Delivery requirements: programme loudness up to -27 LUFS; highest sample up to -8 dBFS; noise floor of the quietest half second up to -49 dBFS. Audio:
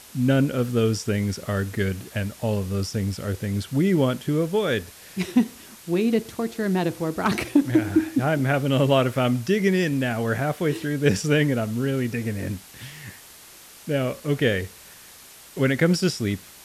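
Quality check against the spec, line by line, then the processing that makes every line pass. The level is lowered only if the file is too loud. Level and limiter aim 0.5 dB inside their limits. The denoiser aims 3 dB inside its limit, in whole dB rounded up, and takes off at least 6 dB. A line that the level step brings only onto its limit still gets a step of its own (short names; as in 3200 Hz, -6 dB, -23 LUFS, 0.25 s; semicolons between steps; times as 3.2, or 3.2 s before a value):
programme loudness -23.5 LUFS: fail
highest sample -6.5 dBFS: fail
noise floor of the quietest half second -47 dBFS: fail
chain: gain -4 dB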